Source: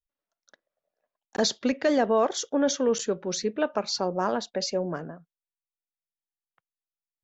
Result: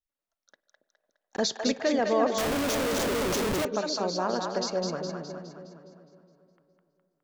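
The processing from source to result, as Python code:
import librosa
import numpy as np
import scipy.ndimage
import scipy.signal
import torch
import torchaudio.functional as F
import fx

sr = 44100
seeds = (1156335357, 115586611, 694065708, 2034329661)

y = fx.echo_split(x, sr, split_hz=560.0, low_ms=278, high_ms=207, feedback_pct=52, wet_db=-4)
y = fx.rev_spring(y, sr, rt60_s=3.3, pass_ms=(48, 58), chirp_ms=70, drr_db=19.0)
y = fx.schmitt(y, sr, flips_db=-31.5, at=(2.38, 3.65))
y = y * librosa.db_to_amplitude(-3.0)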